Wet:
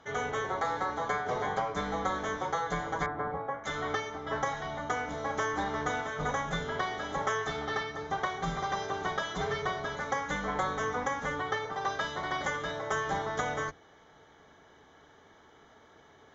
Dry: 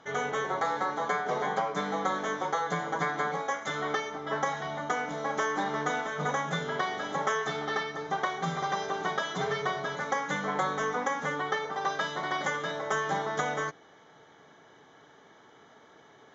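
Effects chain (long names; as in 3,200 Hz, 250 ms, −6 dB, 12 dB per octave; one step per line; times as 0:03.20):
sub-octave generator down 2 octaves, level −5 dB
0:03.06–0:03.64: low-pass filter 1,200 Hz 12 dB per octave
level −2 dB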